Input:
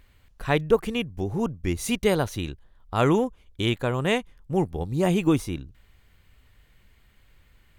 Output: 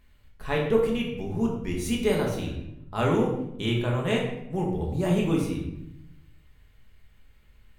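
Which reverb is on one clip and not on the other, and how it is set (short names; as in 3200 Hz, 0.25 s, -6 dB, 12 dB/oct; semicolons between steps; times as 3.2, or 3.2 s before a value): shoebox room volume 250 m³, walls mixed, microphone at 1.4 m; gain -7 dB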